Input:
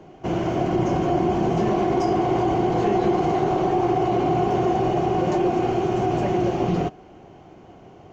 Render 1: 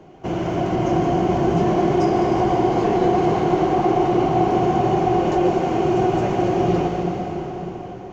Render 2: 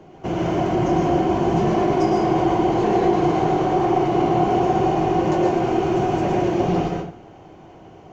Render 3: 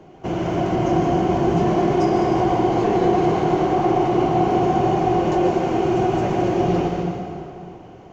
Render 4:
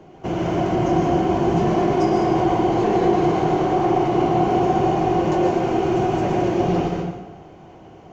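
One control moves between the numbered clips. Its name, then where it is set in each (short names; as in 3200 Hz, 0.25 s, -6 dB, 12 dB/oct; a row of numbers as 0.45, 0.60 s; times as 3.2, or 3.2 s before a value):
plate-style reverb, RT60: 5.3, 0.52, 2.5, 1.1 s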